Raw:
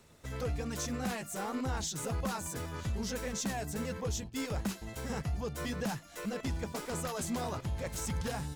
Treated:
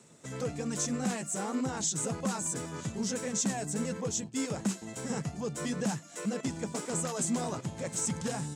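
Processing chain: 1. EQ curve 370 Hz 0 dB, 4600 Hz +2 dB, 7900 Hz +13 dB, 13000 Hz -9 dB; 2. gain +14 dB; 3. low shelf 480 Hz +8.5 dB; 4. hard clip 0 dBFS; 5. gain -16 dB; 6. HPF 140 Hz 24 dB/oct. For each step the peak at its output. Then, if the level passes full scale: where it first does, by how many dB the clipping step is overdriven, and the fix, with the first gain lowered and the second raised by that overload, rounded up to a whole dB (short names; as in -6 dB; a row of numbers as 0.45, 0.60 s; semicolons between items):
-17.0, -3.0, -3.0, -3.0, -19.0, -18.5 dBFS; no overload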